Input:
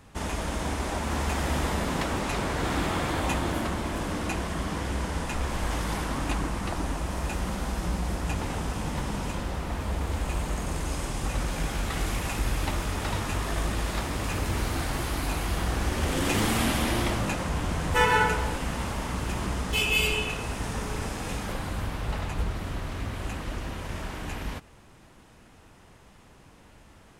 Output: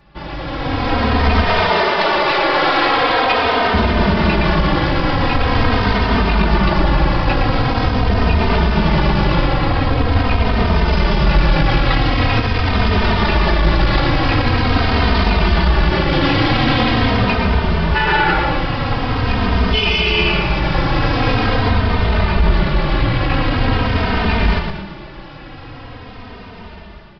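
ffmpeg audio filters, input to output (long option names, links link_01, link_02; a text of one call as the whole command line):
ffmpeg -i in.wav -filter_complex "[0:a]asettb=1/sr,asplit=3[link_01][link_02][link_03];[link_01]atrim=end=1.454[link_04];[link_02]atrim=start=1.45:end=3.74,asetpts=PTS-STARTPTS,afade=type=in:duration=0.004:curve=qsin,afade=type=out:start_time=2.286:duration=0.004:curve=qsin,highpass=frequency=410:width=0.5412,highpass=frequency=410:width=1.3066[link_05];[link_03]atrim=start=3.736[link_06];[link_04][link_05]acrossfade=duration=0.004:curve1=hsin:curve2=qsin[link_07];[link_07][link_06]acrossfade=duration=0.004:curve1=qsin:curve2=hsin,dynaudnorm=framelen=330:gausssize=5:maxgain=16dB,aeval=exprs='clip(val(0),-1,0.158)':channel_layout=same,asplit=7[link_08][link_09][link_10][link_11][link_12][link_13][link_14];[link_09]adelay=115,afreqshift=-82,volume=-6dB[link_15];[link_10]adelay=230,afreqshift=-164,volume=-11.8dB[link_16];[link_11]adelay=345,afreqshift=-246,volume=-17.7dB[link_17];[link_12]adelay=460,afreqshift=-328,volume=-23.5dB[link_18];[link_13]adelay=575,afreqshift=-410,volume=-29.4dB[link_19];[link_14]adelay=690,afreqshift=-492,volume=-35.2dB[link_20];[link_08][link_15][link_16][link_17][link_18][link_19][link_20]amix=inputs=7:normalize=0,aresample=11025,aresample=44100,alimiter=level_in=7dB:limit=-1dB:release=50:level=0:latency=1,asplit=2[link_21][link_22];[link_22]adelay=3,afreqshift=-0.44[link_23];[link_21][link_23]amix=inputs=2:normalize=1,volume=-1dB" out.wav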